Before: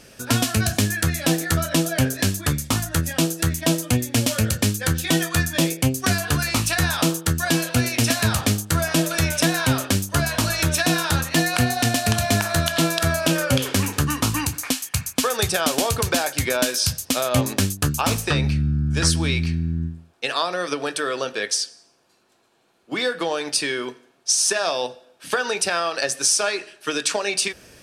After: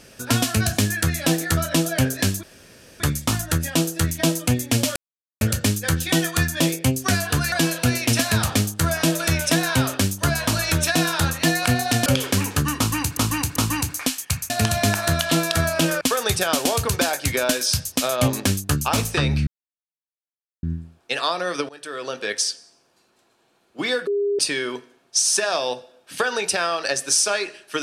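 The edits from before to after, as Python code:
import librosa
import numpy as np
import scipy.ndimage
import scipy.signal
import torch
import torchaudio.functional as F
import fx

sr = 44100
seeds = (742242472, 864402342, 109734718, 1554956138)

y = fx.edit(x, sr, fx.insert_room_tone(at_s=2.43, length_s=0.57),
    fx.insert_silence(at_s=4.39, length_s=0.45),
    fx.cut(start_s=6.5, length_s=0.93),
    fx.move(start_s=11.97, length_s=1.51, to_s=15.14),
    fx.repeat(start_s=14.2, length_s=0.39, count=3),
    fx.silence(start_s=18.6, length_s=1.16),
    fx.fade_in_from(start_s=20.82, length_s=0.62, floor_db=-23.0),
    fx.bleep(start_s=23.2, length_s=0.32, hz=405.0, db=-18.5), tone=tone)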